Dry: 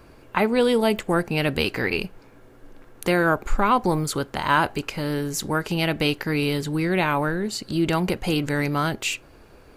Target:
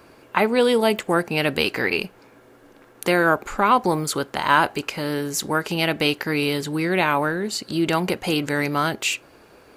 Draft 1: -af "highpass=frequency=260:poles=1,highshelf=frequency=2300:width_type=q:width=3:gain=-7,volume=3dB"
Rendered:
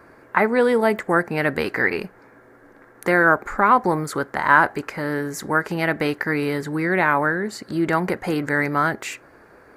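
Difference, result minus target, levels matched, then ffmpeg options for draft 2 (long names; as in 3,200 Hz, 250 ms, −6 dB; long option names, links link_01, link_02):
4,000 Hz band −12.0 dB
-af "highpass=frequency=260:poles=1,volume=3dB"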